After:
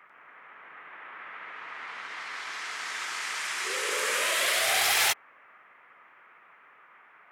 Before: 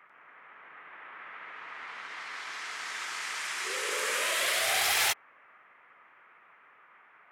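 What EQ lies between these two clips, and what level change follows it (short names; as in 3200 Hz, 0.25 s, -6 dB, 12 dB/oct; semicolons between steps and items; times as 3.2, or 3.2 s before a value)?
HPF 84 Hz; +2.5 dB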